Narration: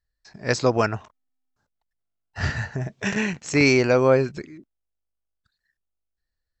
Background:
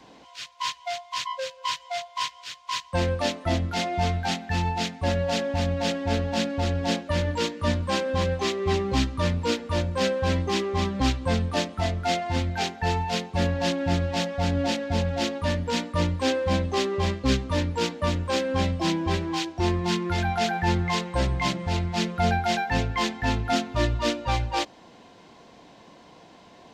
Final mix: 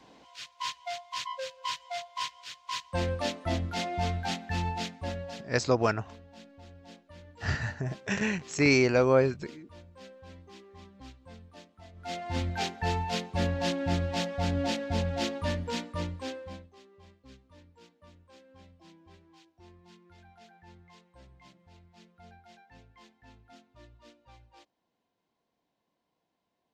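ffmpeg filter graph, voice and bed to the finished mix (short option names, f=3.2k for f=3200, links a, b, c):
-filter_complex "[0:a]adelay=5050,volume=-5dB[a];[1:a]volume=15.5dB,afade=t=out:st=4.68:d=0.84:silence=0.1,afade=t=in:st=11.93:d=0.51:silence=0.0891251,afade=t=out:st=15.38:d=1.32:silence=0.0473151[b];[a][b]amix=inputs=2:normalize=0"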